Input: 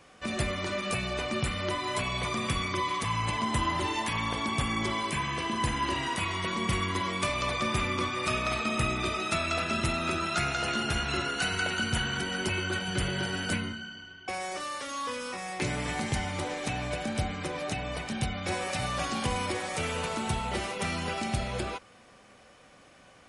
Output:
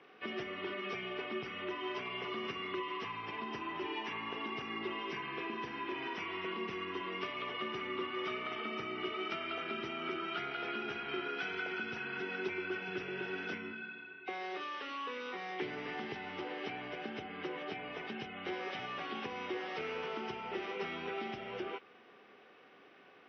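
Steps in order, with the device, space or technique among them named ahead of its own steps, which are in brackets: air absorption 72 m; hearing aid with frequency lowering (nonlinear frequency compression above 1900 Hz 1.5:1; compressor 3:1, threshold -35 dBFS, peak gain reduction 8.5 dB; speaker cabinet 280–6800 Hz, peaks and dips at 400 Hz +10 dB, 570 Hz -8 dB, 1000 Hz -3 dB, 3000 Hz +5 dB, 4300 Hz -8 dB); gain -2 dB

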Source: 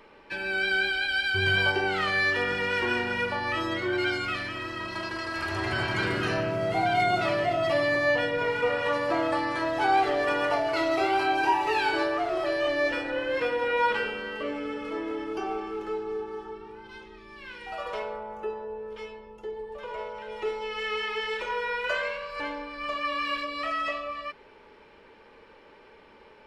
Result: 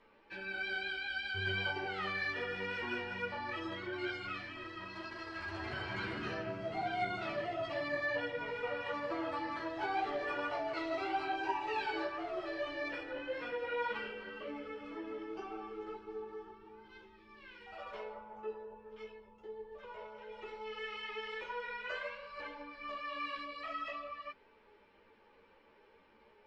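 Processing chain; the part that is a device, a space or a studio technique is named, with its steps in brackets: string-machine ensemble chorus (ensemble effect; LPF 5200 Hz 12 dB/oct); gain -8.5 dB

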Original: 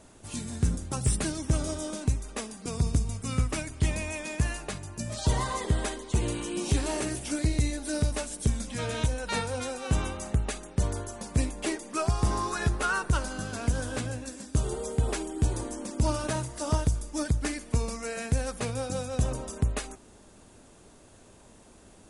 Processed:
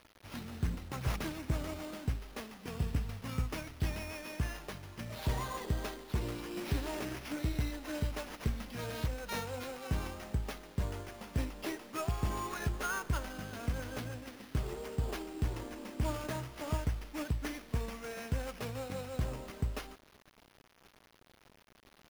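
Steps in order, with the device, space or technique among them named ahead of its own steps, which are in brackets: early 8-bit sampler (sample-rate reducer 7900 Hz, jitter 0%; bit-crush 8-bit); gain -8 dB

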